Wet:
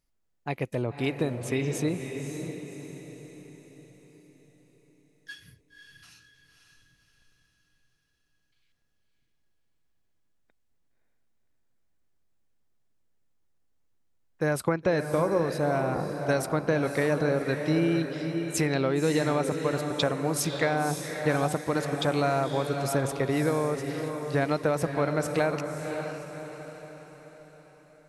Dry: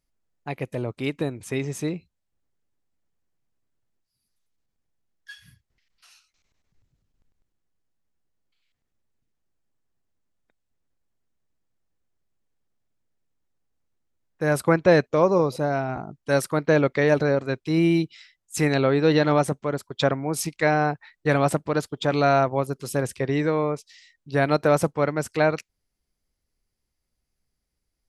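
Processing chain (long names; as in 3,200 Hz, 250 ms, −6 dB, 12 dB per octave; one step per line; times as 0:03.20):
downward compressor, threshold −22 dBFS, peak gain reduction 10 dB
on a send: feedback delay with all-pass diffusion 561 ms, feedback 47%, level −6.5 dB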